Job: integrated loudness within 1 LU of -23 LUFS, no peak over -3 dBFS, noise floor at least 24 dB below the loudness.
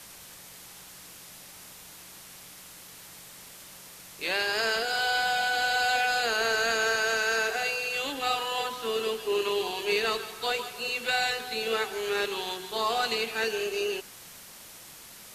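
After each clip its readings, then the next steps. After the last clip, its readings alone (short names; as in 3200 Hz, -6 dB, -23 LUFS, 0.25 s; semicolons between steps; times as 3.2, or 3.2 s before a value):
noise floor -48 dBFS; noise floor target -52 dBFS; loudness -27.5 LUFS; peak -14.0 dBFS; loudness target -23.0 LUFS
-> denoiser 6 dB, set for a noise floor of -48 dBFS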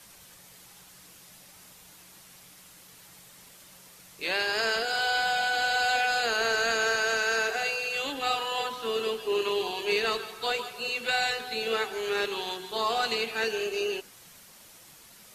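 noise floor -53 dBFS; loudness -27.5 LUFS; peak -14.0 dBFS; loudness target -23.0 LUFS
-> gain +4.5 dB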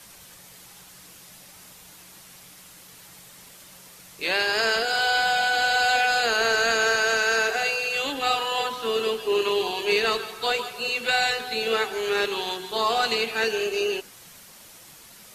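loudness -23.0 LUFS; peak -9.5 dBFS; noise floor -48 dBFS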